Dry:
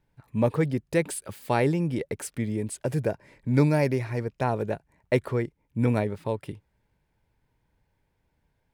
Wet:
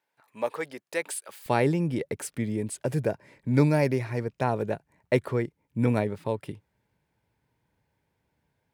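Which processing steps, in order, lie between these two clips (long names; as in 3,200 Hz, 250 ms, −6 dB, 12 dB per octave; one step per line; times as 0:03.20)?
high-pass filter 640 Hz 12 dB per octave, from 0:01.46 90 Hz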